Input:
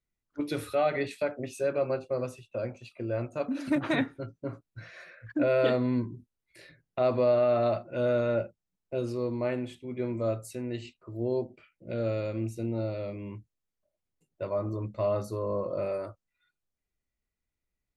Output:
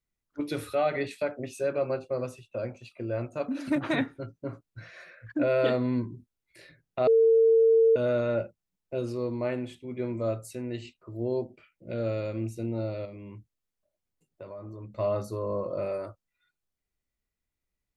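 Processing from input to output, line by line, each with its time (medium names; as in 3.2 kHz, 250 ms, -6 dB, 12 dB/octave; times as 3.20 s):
7.07–7.96 s: bleep 452 Hz -16.5 dBFS
13.05–14.93 s: compression 4:1, threshold -40 dBFS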